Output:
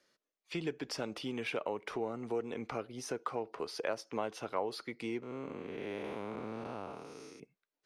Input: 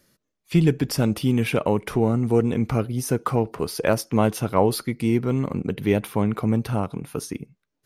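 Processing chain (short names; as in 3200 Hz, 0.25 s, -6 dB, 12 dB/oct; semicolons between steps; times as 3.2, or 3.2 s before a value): 5.22–7.4 time blur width 0.32 s; three-band isolator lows -19 dB, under 330 Hz, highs -23 dB, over 7000 Hz; compressor 2:1, threshold -30 dBFS, peak gain reduction 9 dB; gain -6.5 dB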